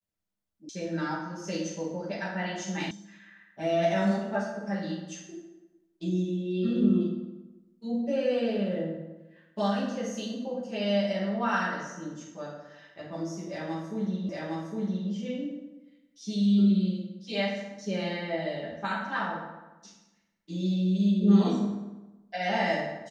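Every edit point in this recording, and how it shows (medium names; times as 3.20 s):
0.69 s: sound stops dead
2.91 s: sound stops dead
14.29 s: repeat of the last 0.81 s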